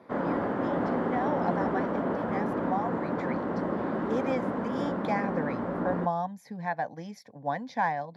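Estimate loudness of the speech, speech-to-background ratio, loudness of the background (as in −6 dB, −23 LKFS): −34.5 LKFS, −4.0 dB, −30.5 LKFS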